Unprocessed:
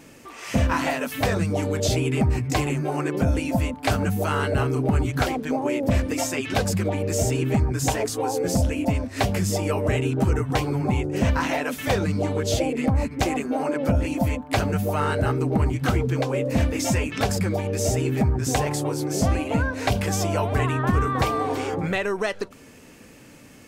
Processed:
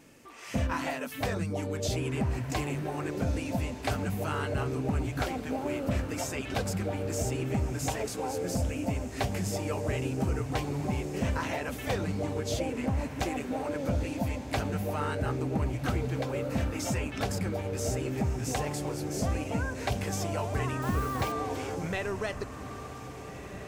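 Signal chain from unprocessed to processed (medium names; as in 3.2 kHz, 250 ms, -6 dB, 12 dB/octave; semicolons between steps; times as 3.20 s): echo that smears into a reverb 1632 ms, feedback 53%, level -11 dB; 20.82–21.32 s: word length cut 6-bit, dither none; trim -8.5 dB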